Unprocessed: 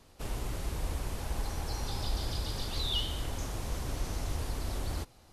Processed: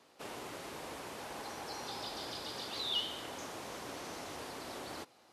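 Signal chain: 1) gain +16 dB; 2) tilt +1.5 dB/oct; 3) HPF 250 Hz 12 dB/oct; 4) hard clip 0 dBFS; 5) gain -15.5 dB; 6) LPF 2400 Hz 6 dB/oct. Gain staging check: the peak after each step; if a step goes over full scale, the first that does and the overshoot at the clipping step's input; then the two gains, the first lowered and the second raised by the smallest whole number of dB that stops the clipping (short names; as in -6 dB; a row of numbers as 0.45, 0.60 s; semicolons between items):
-3.5, -3.5, -4.5, -4.5, -20.0, -24.0 dBFS; no overload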